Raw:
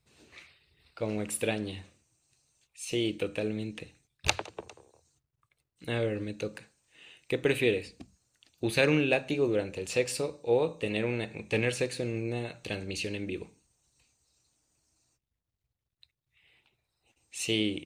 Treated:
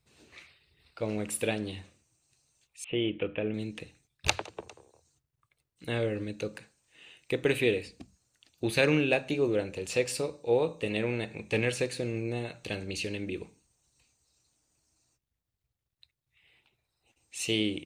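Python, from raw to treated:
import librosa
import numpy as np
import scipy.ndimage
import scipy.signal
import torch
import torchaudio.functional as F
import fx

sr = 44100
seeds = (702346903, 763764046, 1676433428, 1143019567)

y = fx.steep_lowpass(x, sr, hz=3400.0, slope=96, at=(2.84, 3.54))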